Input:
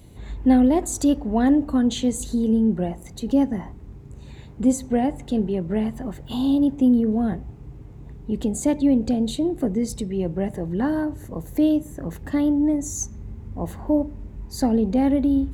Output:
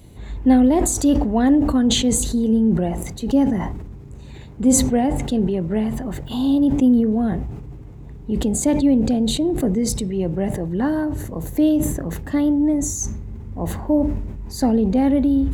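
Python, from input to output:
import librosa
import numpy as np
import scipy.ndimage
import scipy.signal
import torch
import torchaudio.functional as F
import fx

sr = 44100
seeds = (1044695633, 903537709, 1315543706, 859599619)

y = fx.sustainer(x, sr, db_per_s=43.0)
y = F.gain(torch.from_numpy(y), 2.0).numpy()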